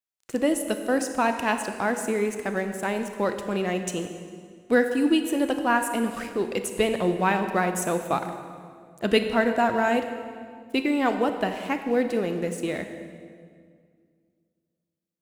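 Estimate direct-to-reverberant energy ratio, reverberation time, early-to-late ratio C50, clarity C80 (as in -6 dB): 7.0 dB, 2.1 s, 8.0 dB, 9.0 dB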